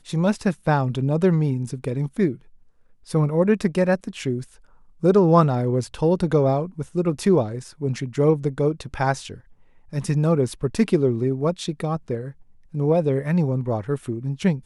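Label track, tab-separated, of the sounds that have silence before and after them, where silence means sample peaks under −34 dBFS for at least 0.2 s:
3.090000	4.440000	sound
5.030000	9.370000	sound
9.930000	12.310000	sound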